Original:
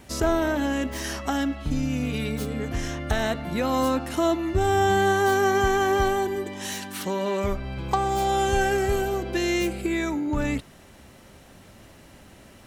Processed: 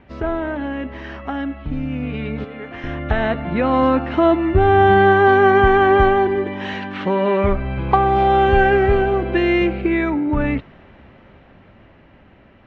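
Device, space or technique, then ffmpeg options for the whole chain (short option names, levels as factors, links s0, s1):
action camera in a waterproof case: -filter_complex "[0:a]asettb=1/sr,asplit=3[s0][s1][s2];[s0]atrim=end=2.444[s3];[s1]atrim=start=2.44:end=2.84,asetpts=PTS-STARTPTS,afade=t=in:d=0.004:c=qsin,afade=t=out:st=0.396:d=0.004:c=qsin,highpass=f=650:p=1[s4];[s2]atrim=start=2.836[s5];[s3][s4]acrossfade=d=0.004:c1=hsin:c2=qsin[s6];[s6][s5]acrossfade=d=0.004:c1=qsin:c2=hsin,lowpass=f=2700:w=0.5412,lowpass=f=2700:w=1.3066,dynaudnorm=f=550:g=11:m=3.76" -ar 48000 -c:a aac -b:a 64k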